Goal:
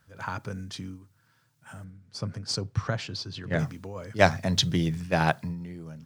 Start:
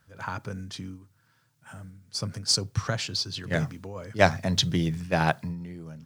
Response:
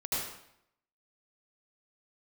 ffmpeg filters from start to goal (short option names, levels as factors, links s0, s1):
-filter_complex "[0:a]asettb=1/sr,asplit=3[s0][s1][s2];[s0]atrim=end=1.844[s3];[s1]atrim=start=1.84:end=3.59,asetpts=PTS-STARTPTS,afade=t=in:d=0.004:c=qsin,afade=t=out:st=1.746:d=0.004:c=qsin,lowpass=f=2200:p=1[s4];[s2]atrim=start=3.586[s5];[s3][s4]acrossfade=d=0.004:c1=hsin:c2=qsin[s6];[s6][s5]acrossfade=d=0.004:c1=qsin:c2=hsin"